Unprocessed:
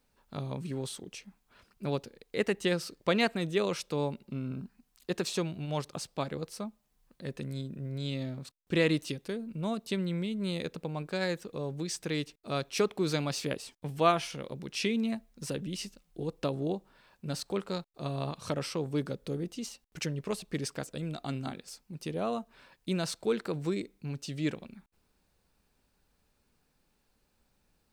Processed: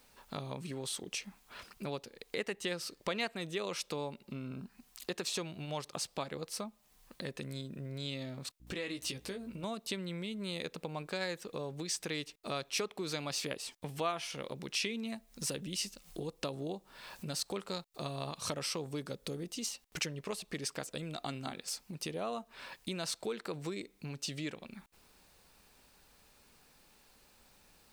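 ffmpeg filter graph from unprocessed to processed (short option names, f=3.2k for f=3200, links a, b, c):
-filter_complex "[0:a]asettb=1/sr,asplit=3[a][b][c];[a]atrim=end=8.604[d];[b]atrim=start=8.6:end=9.64,asetpts=PTS-STARTPTS,afade=t=in:d=0.004:c=qsin,afade=t=out:st=1.036:d=0.004:c=qsin,aeval=exprs='val(0)+0.000891*(sin(2*PI*60*n/s)+sin(2*PI*2*60*n/s)/2+sin(2*PI*3*60*n/s)/3+sin(2*PI*4*60*n/s)/4+sin(2*PI*5*60*n/s)/5)':c=same,acompressor=threshold=-37dB:ratio=3:attack=3.2:release=140:knee=1:detection=peak,asplit=2[e][f];[f]adelay=16,volume=-6.5dB[g];[e][g]amix=inputs=2:normalize=0,atrim=end_sample=45864[h];[c]atrim=start=9.636[i];[d][h]acrossfade=d=0.004:c1=hsin:c2=qsin[j];[j][i]acrossfade=d=0.004:c1=qsin:c2=hsin,asettb=1/sr,asplit=3[k][l][m];[k]atrim=end=15.064[n];[l]atrim=start=15.06:end=19.71,asetpts=PTS-STARTPTS,afade=t=in:d=0.004:c=qsin,afade=t=out:st=4.646:d=0.004:c=qsin,bass=f=250:g=2,treble=f=4k:g=4,acompressor=mode=upward:threshold=-53dB:ratio=2.5:attack=3.2:release=140:knee=2.83:detection=peak[o];[m]atrim=start=19.706[p];[n][o]acrossfade=d=0.004:c1=hsin:c2=qsin[q];[q][p]acrossfade=d=0.004:c1=qsin:c2=hsin,equalizer=f=1.5k:w=5.2:g=-2.5,acompressor=threshold=-49dB:ratio=3,lowshelf=f=450:g=-9.5,volume=13dB"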